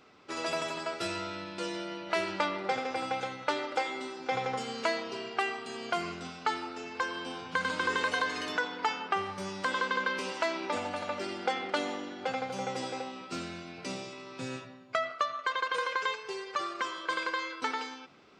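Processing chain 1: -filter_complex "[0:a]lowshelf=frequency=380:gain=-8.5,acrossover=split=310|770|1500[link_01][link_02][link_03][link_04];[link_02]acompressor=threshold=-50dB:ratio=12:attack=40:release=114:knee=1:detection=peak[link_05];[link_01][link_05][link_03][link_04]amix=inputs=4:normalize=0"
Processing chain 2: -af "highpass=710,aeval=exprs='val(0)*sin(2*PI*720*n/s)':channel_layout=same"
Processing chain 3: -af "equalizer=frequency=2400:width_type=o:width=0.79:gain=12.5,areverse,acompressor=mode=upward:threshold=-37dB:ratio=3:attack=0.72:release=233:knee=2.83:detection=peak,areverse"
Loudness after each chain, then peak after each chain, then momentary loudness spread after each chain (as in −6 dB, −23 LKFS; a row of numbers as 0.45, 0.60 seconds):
−35.5, −38.0, −29.0 LKFS; −16.0, −17.5, −10.0 dBFS; 9, 11, 8 LU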